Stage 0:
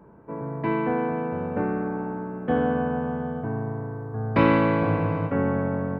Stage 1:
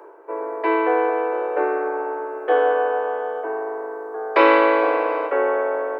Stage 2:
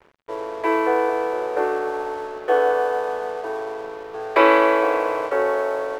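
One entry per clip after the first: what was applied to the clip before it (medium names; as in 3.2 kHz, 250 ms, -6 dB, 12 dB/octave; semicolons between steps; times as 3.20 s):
steep high-pass 340 Hz 72 dB/octave; reverse; upward compressor, threshold -41 dBFS; reverse; trim +8 dB
crossover distortion -40.5 dBFS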